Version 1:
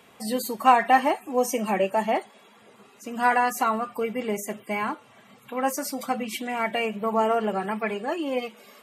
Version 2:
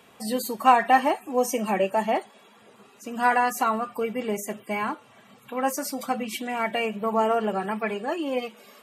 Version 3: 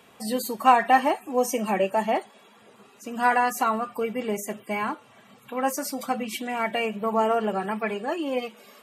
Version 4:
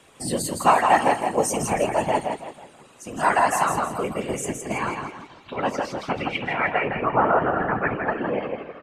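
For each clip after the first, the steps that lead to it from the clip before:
notch filter 2,100 Hz, Q 19
no processing that can be heard
low-pass filter sweep 8,900 Hz → 1,600 Hz, 0:04.35–0:06.92; repeating echo 163 ms, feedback 37%, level −5 dB; random phases in short frames

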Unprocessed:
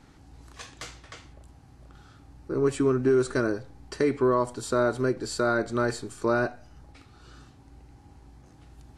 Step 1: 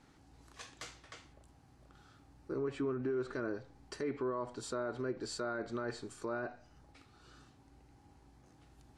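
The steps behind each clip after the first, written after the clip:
treble cut that deepens with the level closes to 2,800 Hz, closed at −20.5 dBFS
low-shelf EQ 120 Hz −7.5 dB
brickwall limiter −21.5 dBFS, peak gain reduction 8 dB
level −7 dB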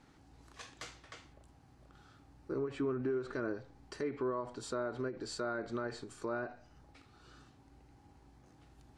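high-shelf EQ 7,000 Hz −4.5 dB
every ending faded ahead of time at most 170 dB per second
level +1 dB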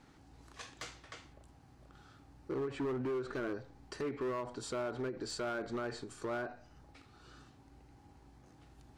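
hard clipping −34 dBFS, distortion −12 dB
level +1.5 dB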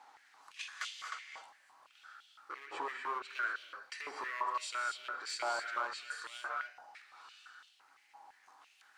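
reverb whose tail is shaped and stops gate 280 ms rising, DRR 3.5 dB
high-pass on a step sequencer 5.9 Hz 860–3,100 Hz

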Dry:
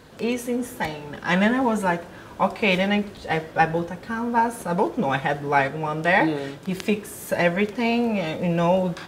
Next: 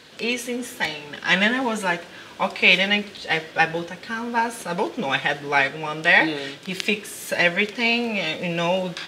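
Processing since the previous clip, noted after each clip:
meter weighting curve D
level −2 dB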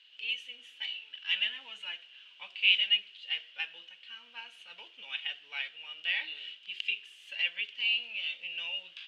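resonant band-pass 2,900 Hz, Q 12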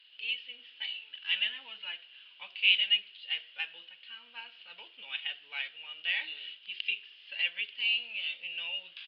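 downsampling to 11,025 Hz

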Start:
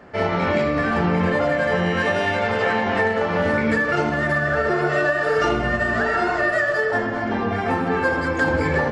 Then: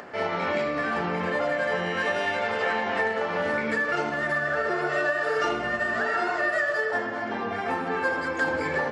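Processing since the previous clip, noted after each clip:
upward compression, threshold −28 dBFS
high-pass filter 420 Hz 6 dB per octave
level −4 dB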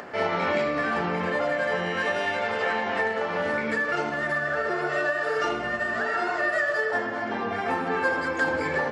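speech leveller 2 s
surface crackle 10 per second −51 dBFS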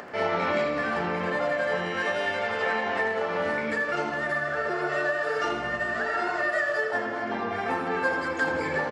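repeating echo 83 ms, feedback 57%, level −12 dB
level −1.5 dB

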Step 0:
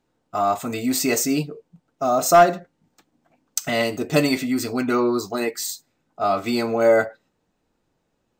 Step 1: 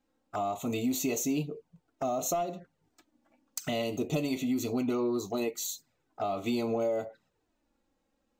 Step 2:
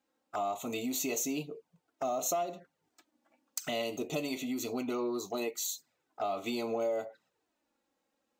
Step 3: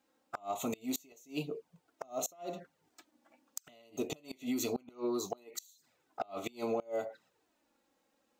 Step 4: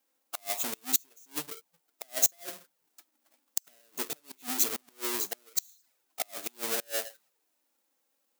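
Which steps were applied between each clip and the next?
downward compressor 12 to 1, threshold −22 dBFS, peak gain reduction 14.5 dB; soft clipping −15.5 dBFS, distortion −24 dB; flanger swept by the level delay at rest 3.8 ms, full sweep at −28 dBFS; level −2.5 dB
high-pass filter 440 Hz 6 dB per octave
downward compressor 2 to 1, threshold −37 dBFS, peak gain reduction 5.5 dB; gate with flip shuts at −28 dBFS, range −27 dB; level +4.5 dB
each half-wave held at its own peak; RIAA equalisation recording; expander for the loud parts 1.5 to 1, over −39 dBFS

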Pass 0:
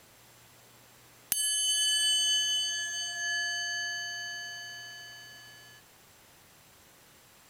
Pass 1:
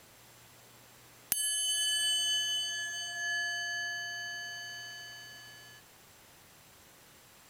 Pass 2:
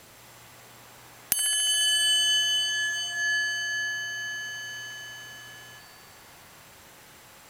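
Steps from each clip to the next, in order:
dynamic equaliser 5,200 Hz, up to −6 dB, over −43 dBFS, Q 0.71
delay with a band-pass on its return 70 ms, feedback 84%, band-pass 1,200 Hz, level −5 dB; level +6 dB

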